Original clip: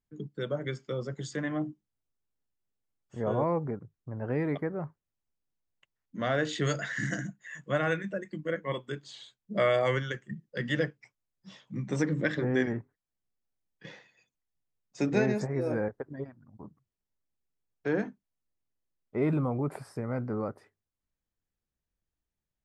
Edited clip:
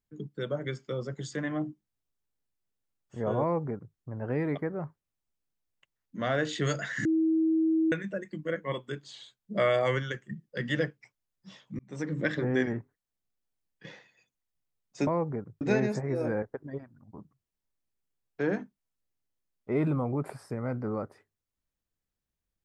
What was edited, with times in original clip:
3.42–3.96 s: copy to 15.07 s
7.05–7.92 s: bleep 321 Hz -22 dBFS
11.79–12.27 s: fade in

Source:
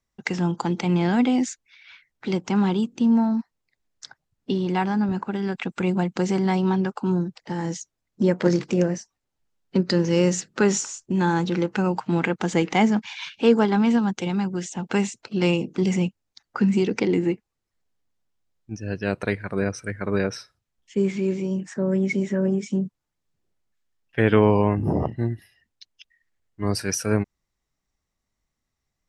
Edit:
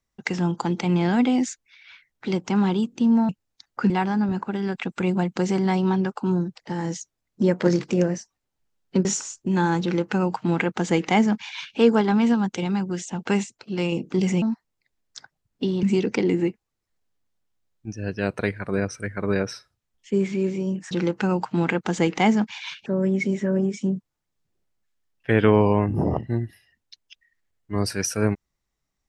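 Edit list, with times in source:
3.29–4.70 s: swap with 16.06–16.67 s
9.85–10.69 s: delete
11.46–13.41 s: copy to 21.75 s
15.08–15.56 s: gain -4.5 dB

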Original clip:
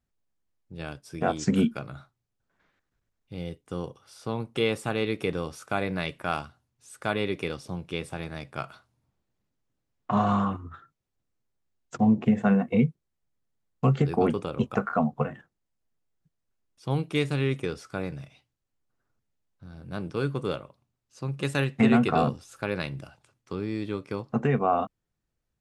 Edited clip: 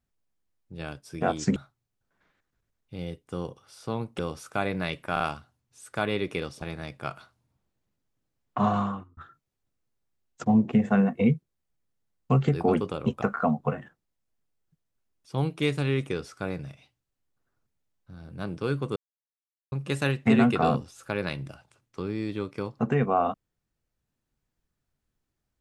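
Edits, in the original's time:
1.56–1.95 s: delete
4.58–5.35 s: delete
6.28 s: stutter 0.04 s, 3 plays
7.70–8.15 s: delete
10.19–10.70 s: fade out
20.49–21.25 s: mute

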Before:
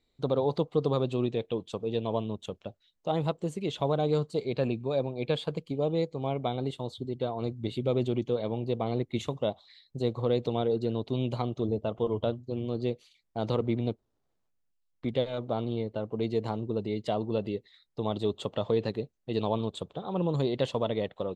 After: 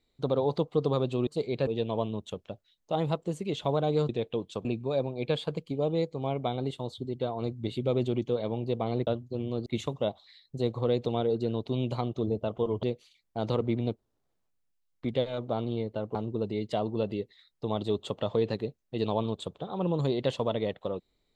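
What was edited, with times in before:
1.27–1.83 s: swap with 4.25–4.65 s
12.24–12.83 s: move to 9.07 s
16.15–16.50 s: delete

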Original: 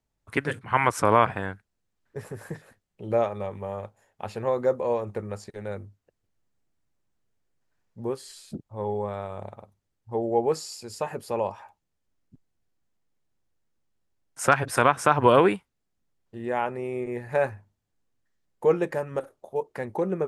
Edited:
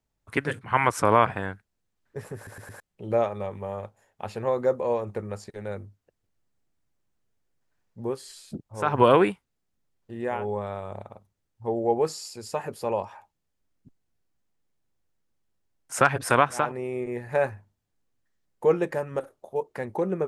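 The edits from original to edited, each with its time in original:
2.36 s: stutter in place 0.11 s, 4 plays
15.09–16.62 s: move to 8.85 s, crossfade 0.24 s

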